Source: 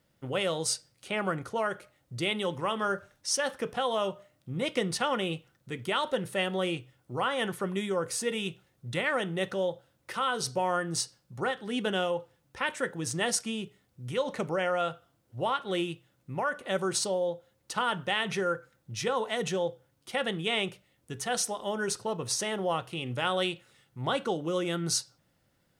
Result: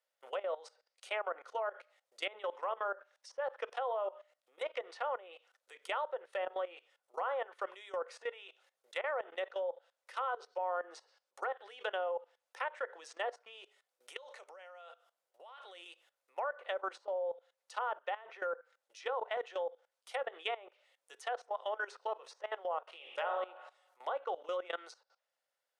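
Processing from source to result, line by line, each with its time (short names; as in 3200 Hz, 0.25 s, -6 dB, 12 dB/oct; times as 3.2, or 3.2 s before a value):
14.17–15.86 compressor 2.5:1, threshold -41 dBFS
22.82–23.32 reverb throw, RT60 0.91 s, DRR 2 dB
whole clip: steep high-pass 510 Hz 36 dB/oct; treble ducked by the level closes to 1000 Hz, closed at -27.5 dBFS; level quantiser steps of 18 dB; gain +1 dB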